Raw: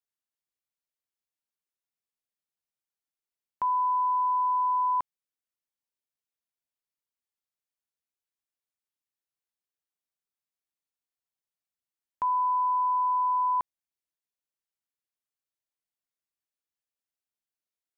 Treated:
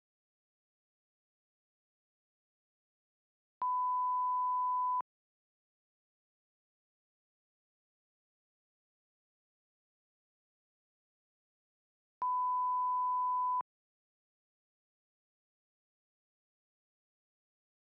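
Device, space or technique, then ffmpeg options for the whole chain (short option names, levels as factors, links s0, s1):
Bluetooth headset: -af "highpass=f=180:p=1,aresample=16000,aresample=44100,volume=0.422" -ar 44100 -c:a sbc -b:a 64k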